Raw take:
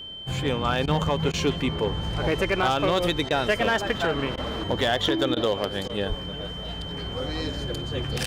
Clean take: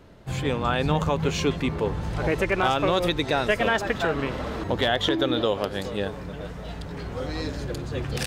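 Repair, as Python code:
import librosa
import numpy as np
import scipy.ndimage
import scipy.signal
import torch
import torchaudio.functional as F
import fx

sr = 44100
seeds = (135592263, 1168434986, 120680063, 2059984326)

y = fx.fix_declip(x, sr, threshold_db=-15.0)
y = fx.notch(y, sr, hz=3100.0, q=30.0)
y = fx.fix_deplosive(y, sr, at_s=(6.08,))
y = fx.fix_interpolate(y, sr, at_s=(0.86, 1.32, 3.29, 4.36, 5.35, 5.88), length_ms=14.0)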